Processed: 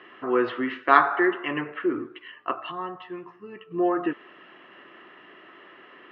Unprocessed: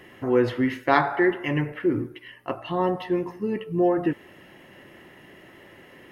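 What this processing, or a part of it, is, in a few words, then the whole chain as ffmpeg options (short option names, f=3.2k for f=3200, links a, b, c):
phone earpiece: -filter_complex "[0:a]asplit=3[a][b][c];[a]afade=t=out:st=2.7:d=0.02[d];[b]equalizer=f=125:t=o:w=1:g=3,equalizer=f=250:t=o:w=1:g=-11,equalizer=f=500:t=o:w=1:g=-9,equalizer=f=1k:t=o:w=1:g=-6,equalizer=f=2k:t=o:w=1:g=-4,equalizer=f=4k:t=o:w=1:g=-8,afade=t=in:st=2.7:d=0.02,afade=t=out:st=3.7:d=0.02[e];[c]afade=t=in:st=3.7:d=0.02[f];[d][e][f]amix=inputs=3:normalize=0,highpass=400,equalizer=f=540:t=q:w=4:g=-8,equalizer=f=850:t=q:w=4:g=-6,equalizer=f=1.2k:t=q:w=4:g=9,equalizer=f=2.1k:t=q:w=4:g=-6,lowpass=f=3.3k:w=0.5412,lowpass=f=3.3k:w=1.3066,volume=3dB"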